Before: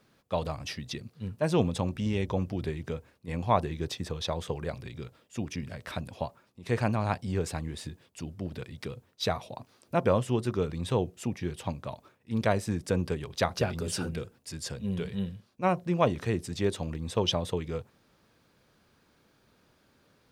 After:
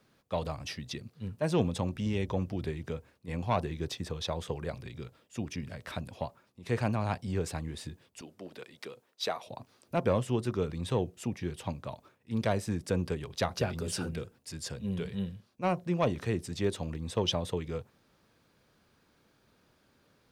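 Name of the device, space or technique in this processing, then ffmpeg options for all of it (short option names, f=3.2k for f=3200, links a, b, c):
one-band saturation: -filter_complex "[0:a]acrossover=split=410|2900[a][b][c];[b]asoftclip=type=tanh:threshold=-20dB[d];[a][d][c]amix=inputs=3:normalize=0,asettb=1/sr,asplit=3[e][f][g];[e]atrim=end=8.214[h];[f]atrim=start=8.21:end=9.47,asetpts=PTS-STARTPTS,afade=t=in:d=0.004:c=qsin,afade=t=out:st=1.256:d=0.004:c=qsin,highpass=360[i];[g]atrim=start=9.466[j];[h][i]acrossfade=d=0.004:c1=hsin:c2=qsin[k];[k][j]acrossfade=d=0.004:c1=qsin:c2=hsin,volume=-2dB"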